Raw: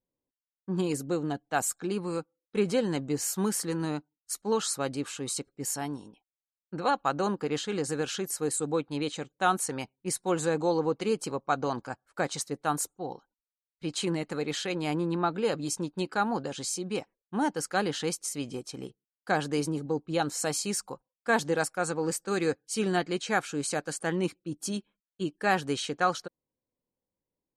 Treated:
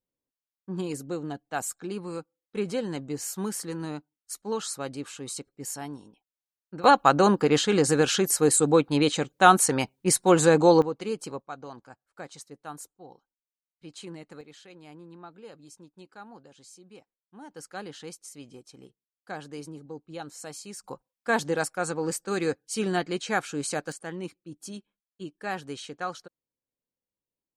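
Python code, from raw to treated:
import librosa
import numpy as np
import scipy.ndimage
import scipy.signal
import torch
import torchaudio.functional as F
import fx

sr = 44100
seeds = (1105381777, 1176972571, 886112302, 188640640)

y = fx.gain(x, sr, db=fx.steps((0.0, -3.0), (6.84, 9.0), (10.82, -3.0), (11.42, -11.5), (14.41, -18.0), (17.51, -10.5), (20.84, 0.5), (23.92, -7.0)))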